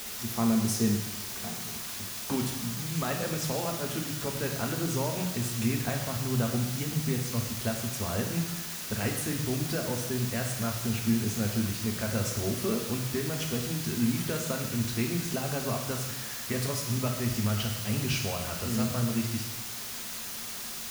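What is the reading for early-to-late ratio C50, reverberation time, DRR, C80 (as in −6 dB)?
5.0 dB, 1.0 s, 1.5 dB, 7.0 dB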